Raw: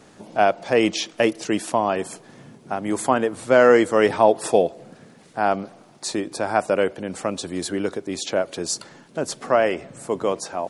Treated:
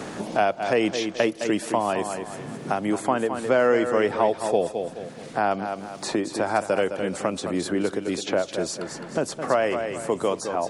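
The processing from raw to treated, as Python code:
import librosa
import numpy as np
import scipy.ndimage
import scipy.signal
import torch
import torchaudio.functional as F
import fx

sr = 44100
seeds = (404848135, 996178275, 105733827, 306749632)

y = fx.high_shelf(x, sr, hz=3800.0, db=-9.0, at=(2.86, 5.51))
y = fx.echo_feedback(y, sr, ms=212, feedback_pct=24, wet_db=-10.0)
y = fx.band_squash(y, sr, depth_pct=70)
y = y * librosa.db_to_amplitude(-3.0)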